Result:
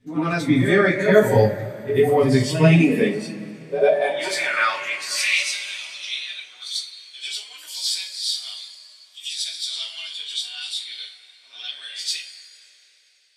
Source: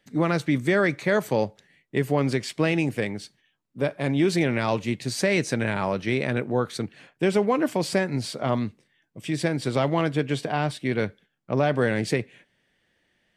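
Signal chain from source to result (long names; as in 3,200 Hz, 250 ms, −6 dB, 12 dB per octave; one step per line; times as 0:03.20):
high-pass filter sweep 100 Hz → 3,700 Hz, 0:02.27–0:05.58
on a send: backwards echo 92 ms −8 dB
on the sum: coupled-rooms reverb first 0.26 s, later 3.9 s, from −18 dB, DRR −7 dB
noise reduction from a noise print of the clip's start 9 dB
level −1.5 dB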